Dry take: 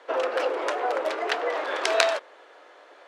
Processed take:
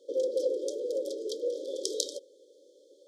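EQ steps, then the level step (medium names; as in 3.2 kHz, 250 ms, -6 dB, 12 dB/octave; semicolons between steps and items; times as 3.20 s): brick-wall FIR band-stop 580–3100 Hz; bass shelf 220 Hz -7.5 dB; high-order bell 2.5 kHz -10.5 dB; 0.0 dB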